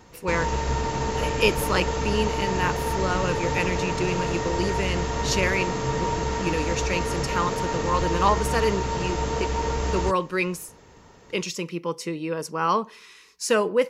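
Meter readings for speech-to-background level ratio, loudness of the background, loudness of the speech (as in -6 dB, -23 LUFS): -0.5 dB, -27.0 LUFS, -27.5 LUFS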